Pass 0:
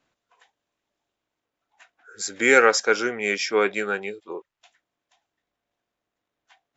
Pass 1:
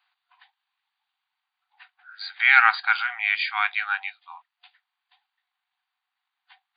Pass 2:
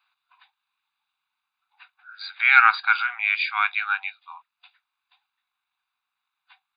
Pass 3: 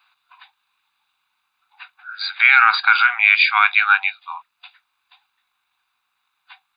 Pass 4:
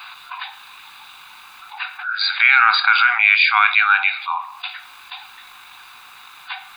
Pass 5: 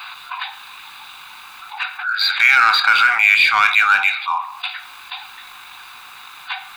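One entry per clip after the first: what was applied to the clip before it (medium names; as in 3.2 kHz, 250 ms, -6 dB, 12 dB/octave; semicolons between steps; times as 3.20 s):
FFT band-pass 720–4800 Hz; tilt EQ +1.5 dB/octave; trim +1.5 dB
comb 0.8 ms, depth 60%; trim -1 dB
loudness maximiser +11.5 dB; trim -1 dB
reverberation RT60 0.60 s, pre-delay 7 ms, DRR 15.5 dB; level flattener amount 50%; trim -1.5 dB
in parallel at -5.5 dB: overload inside the chain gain 20.5 dB; on the sum: transformer saturation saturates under 1.4 kHz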